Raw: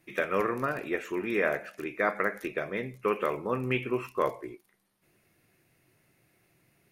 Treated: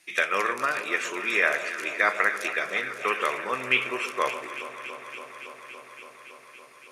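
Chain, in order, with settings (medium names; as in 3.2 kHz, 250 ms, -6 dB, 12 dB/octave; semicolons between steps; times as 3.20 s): frequency weighting ITU-R 468; echo whose repeats swap between lows and highs 141 ms, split 1.1 kHz, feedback 90%, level -11.5 dB; trim +3.5 dB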